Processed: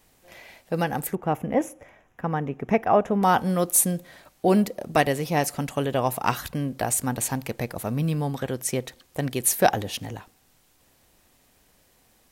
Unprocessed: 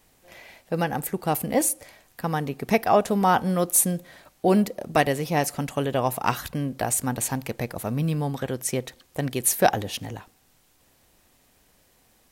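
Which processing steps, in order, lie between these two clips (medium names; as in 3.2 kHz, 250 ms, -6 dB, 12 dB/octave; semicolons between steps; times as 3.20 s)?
1.15–3.23 s: boxcar filter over 10 samples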